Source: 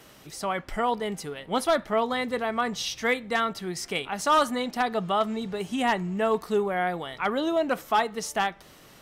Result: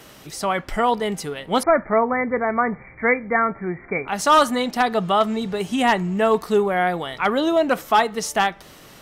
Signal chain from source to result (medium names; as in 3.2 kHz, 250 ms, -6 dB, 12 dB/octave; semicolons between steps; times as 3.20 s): 1.63–4.08 s: brick-wall FIR low-pass 2.4 kHz; trim +6.5 dB